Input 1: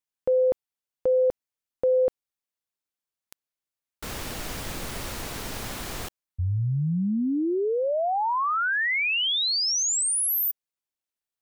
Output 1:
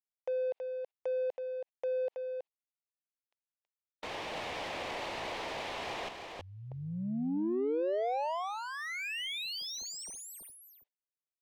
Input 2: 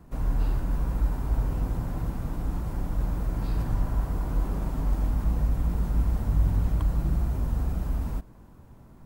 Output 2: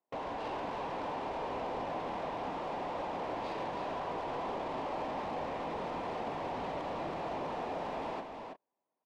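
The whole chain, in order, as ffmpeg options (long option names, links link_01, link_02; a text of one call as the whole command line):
ffmpeg -i in.wav -filter_complex "[0:a]agate=range=-40dB:threshold=-36dB:ratio=16:release=72:detection=rms,highpass=590,lowpass=3200,acompressor=threshold=-40dB:ratio=10:attack=0.18:release=48:knee=6,asplit=2[link_01][link_02];[link_02]highpass=frequency=720:poles=1,volume=18dB,asoftclip=type=tanh:threshold=-35.5dB[link_03];[link_01][link_03]amix=inputs=2:normalize=0,lowpass=frequency=1400:poles=1,volume=-6dB,equalizer=frequency=1400:width_type=o:width=0.77:gain=-13,asplit=2[link_04][link_05];[link_05]aecho=0:1:325:0.531[link_06];[link_04][link_06]amix=inputs=2:normalize=0,volume=9dB" out.wav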